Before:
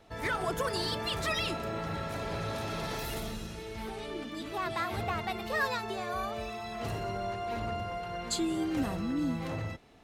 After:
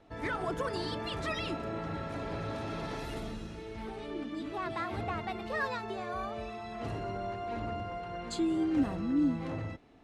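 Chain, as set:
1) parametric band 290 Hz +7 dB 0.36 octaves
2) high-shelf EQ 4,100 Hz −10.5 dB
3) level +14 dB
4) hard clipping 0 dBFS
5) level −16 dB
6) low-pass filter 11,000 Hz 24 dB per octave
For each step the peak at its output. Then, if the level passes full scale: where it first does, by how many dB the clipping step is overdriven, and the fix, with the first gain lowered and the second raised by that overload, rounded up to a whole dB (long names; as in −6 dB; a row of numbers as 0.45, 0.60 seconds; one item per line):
−17.5, −17.5, −3.5, −3.5, −19.5, −19.5 dBFS
no step passes full scale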